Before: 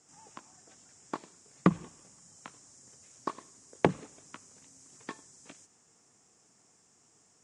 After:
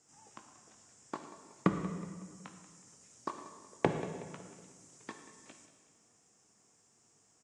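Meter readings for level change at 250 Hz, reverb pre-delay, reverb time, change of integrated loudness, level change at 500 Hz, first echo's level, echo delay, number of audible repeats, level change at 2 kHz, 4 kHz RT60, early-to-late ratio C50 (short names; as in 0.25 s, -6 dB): -4.0 dB, 5 ms, 1.7 s, -5.5 dB, -3.0 dB, -15.5 dB, 0.185 s, 3, -3.5 dB, 1.6 s, 6.5 dB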